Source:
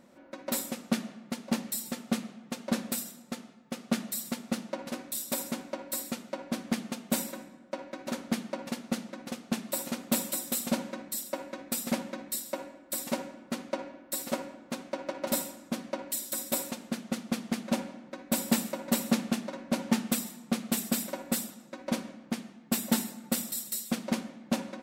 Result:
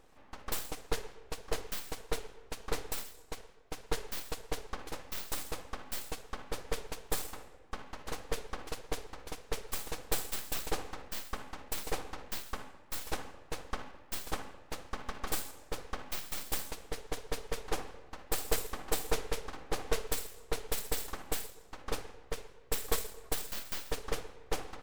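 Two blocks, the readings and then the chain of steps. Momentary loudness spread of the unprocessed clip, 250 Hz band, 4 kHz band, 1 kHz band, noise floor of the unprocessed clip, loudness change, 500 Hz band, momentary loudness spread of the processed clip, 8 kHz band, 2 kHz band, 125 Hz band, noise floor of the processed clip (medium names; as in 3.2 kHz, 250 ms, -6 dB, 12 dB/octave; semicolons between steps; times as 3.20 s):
10 LU, -17.0 dB, -3.0 dB, -2.0 dB, -54 dBFS, -6.0 dB, -3.5 dB, 10 LU, -6.5 dB, -2.5 dB, -4.5 dB, -56 dBFS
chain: full-wave rectifier; trim -2 dB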